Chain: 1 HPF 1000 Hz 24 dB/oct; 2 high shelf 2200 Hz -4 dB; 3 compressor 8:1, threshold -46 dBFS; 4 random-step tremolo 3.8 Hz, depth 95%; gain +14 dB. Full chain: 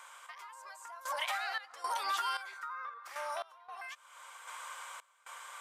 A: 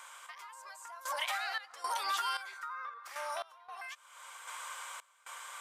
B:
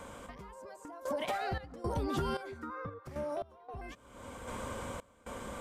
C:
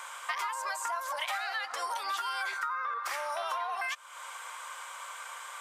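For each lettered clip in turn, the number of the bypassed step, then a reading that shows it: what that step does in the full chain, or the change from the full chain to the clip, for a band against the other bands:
2, 8 kHz band +3.0 dB; 1, 500 Hz band +15.0 dB; 4, momentary loudness spread change -7 LU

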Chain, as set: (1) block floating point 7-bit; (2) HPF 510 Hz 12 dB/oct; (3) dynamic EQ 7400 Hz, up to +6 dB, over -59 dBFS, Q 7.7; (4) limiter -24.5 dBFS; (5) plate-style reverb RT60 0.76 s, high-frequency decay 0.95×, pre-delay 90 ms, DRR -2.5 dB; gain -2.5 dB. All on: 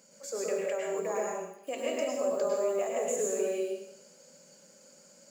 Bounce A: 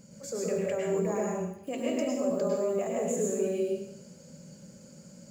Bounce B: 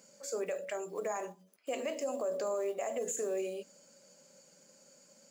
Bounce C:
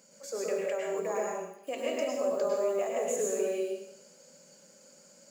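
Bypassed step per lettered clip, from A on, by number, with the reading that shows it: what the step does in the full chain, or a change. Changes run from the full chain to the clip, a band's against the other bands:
2, 250 Hz band +9.5 dB; 5, crest factor change -4.0 dB; 3, 8 kHz band -1.5 dB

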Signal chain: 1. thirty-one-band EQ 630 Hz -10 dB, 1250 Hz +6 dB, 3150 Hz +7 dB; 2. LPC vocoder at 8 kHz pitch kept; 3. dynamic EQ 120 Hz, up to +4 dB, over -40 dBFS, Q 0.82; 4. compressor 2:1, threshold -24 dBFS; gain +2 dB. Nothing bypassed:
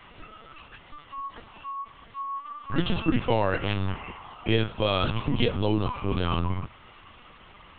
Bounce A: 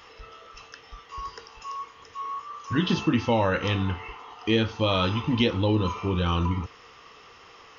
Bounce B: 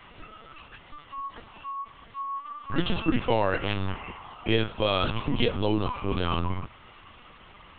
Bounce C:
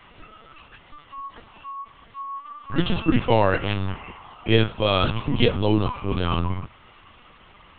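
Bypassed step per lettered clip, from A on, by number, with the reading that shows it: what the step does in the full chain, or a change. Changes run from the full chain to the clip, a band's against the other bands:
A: 2, crest factor change -2.5 dB; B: 3, 125 Hz band -3.0 dB; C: 4, momentary loudness spread change -3 LU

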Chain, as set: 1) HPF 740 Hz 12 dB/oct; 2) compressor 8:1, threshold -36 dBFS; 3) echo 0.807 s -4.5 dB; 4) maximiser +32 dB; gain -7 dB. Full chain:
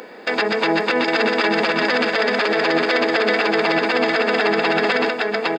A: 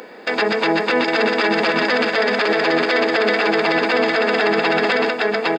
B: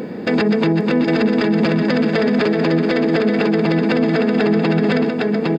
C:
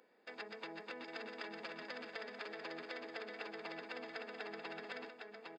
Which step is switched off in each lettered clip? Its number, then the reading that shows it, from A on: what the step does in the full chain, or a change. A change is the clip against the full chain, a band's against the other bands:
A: 2, mean gain reduction 2.5 dB; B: 1, 125 Hz band +21.0 dB; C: 4, crest factor change +8.0 dB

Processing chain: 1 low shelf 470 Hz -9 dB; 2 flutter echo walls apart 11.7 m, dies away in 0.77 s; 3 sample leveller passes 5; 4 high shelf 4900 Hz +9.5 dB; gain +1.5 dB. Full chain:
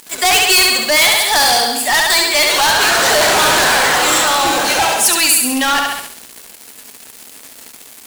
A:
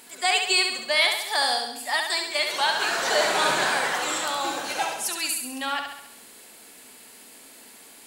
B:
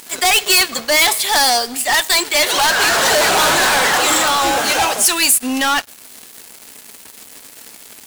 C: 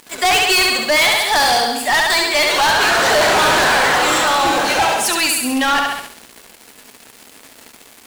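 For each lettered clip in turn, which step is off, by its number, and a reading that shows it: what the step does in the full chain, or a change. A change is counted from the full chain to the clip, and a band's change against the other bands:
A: 3, momentary loudness spread change +3 LU; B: 2, loudness change -2.0 LU; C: 4, 8 kHz band -7.0 dB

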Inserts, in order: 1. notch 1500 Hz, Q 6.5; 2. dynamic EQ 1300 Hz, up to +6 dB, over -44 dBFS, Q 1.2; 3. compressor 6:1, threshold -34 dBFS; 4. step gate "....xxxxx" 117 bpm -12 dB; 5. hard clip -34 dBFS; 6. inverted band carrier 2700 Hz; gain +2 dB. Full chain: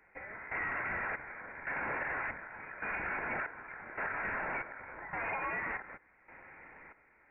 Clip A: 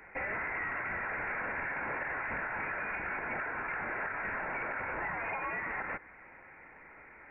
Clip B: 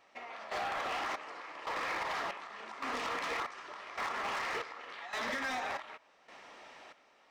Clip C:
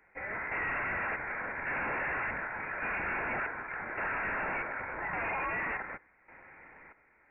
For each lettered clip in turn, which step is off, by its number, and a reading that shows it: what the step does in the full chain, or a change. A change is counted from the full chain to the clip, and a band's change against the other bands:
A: 4, crest factor change -2.0 dB; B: 6, 125 Hz band -9.5 dB; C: 3, mean gain reduction 7.5 dB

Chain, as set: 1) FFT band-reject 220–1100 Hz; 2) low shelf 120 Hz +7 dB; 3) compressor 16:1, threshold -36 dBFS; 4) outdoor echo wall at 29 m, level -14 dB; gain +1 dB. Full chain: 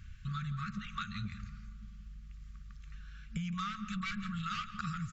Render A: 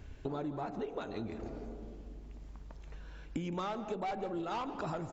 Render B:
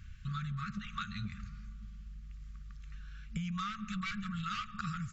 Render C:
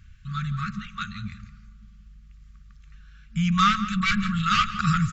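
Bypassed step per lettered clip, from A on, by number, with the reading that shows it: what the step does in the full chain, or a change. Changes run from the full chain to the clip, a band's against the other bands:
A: 1, 1 kHz band +8.0 dB; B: 4, momentary loudness spread change -2 LU; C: 3, mean gain reduction 6.5 dB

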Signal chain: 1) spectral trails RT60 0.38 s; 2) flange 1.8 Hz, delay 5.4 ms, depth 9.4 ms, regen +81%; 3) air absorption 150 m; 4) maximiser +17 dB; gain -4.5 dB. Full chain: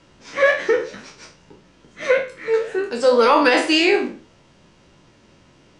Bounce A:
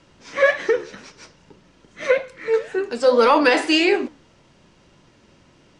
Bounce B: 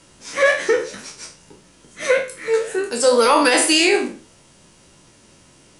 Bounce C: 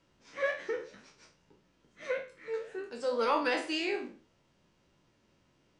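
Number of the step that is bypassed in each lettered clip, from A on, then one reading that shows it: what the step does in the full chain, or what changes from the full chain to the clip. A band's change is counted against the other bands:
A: 1, momentary loudness spread change -3 LU; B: 3, 8 kHz band +14.5 dB; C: 4, crest factor change +3.5 dB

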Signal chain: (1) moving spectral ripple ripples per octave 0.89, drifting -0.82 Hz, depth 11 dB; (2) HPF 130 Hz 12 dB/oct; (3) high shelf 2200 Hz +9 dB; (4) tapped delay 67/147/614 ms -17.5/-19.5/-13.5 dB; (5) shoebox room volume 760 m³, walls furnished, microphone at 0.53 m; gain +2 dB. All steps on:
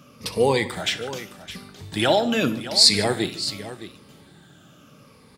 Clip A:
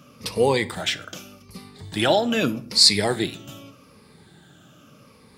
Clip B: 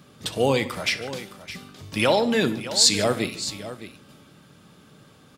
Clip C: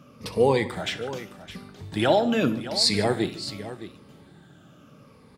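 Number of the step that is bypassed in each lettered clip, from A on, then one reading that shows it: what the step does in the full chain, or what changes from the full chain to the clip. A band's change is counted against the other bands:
4, echo-to-direct -8.5 dB to -12.5 dB; 1, 4 kHz band -3.0 dB; 3, 8 kHz band -7.5 dB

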